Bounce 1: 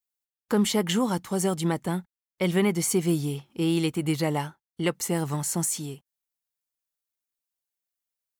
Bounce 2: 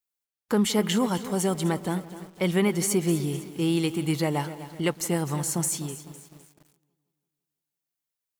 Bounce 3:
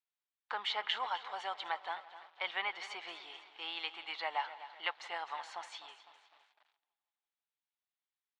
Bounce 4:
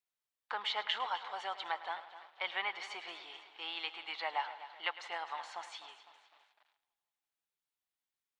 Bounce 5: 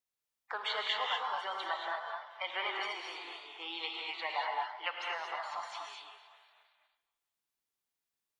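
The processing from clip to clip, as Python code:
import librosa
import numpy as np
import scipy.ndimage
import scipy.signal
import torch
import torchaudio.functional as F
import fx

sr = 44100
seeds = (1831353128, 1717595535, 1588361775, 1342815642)

y1 = fx.echo_wet_lowpass(x, sr, ms=167, feedback_pct=58, hz=2600.0, wet_db=-19.5)
y1 = fx.echo_crushed(y1, sr, ms=254, feedback_pct=55, bits=7, wet_db=-13.5)
y2 = scipy.signal.sosfilt(scipy.signal.cheby1(3, 1.0, [770.0, 3800.0], 'bandpass', fs=sr, output='sos'), y1)
y2 = y2 * librosa.db_to_amplitude(-3.0)
y3 = y2 + 10.0 ** (-15.5 / 20.0) * np.pad(y2, (int(105 * sr / 1000.0), 0))[:len(y2)]
y4 = fx.spec_quant(y3, sr, step_db=30)
y4 = fx.rev_gated(y4, sr, seeds[0], gate_ms=260, shape='rising', drr_db=-0.5)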